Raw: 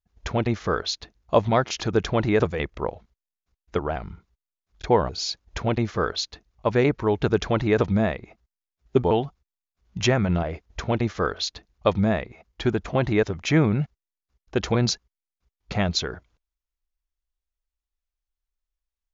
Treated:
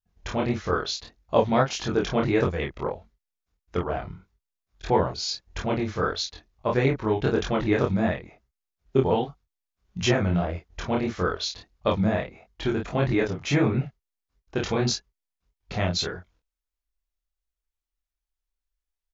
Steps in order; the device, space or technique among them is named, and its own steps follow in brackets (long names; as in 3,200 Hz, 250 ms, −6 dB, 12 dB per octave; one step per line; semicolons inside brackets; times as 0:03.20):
double-tracked vocal (double-tracking delay 22 ms −3 dB; chorus effect 1.6 Hz, depth 7.8 ms)